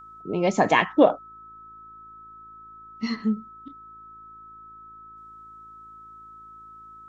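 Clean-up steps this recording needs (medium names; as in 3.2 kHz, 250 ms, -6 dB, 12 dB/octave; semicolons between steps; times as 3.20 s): de-hum 54.7 Hz, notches 7; band-stop 1.3 kHz, Q 30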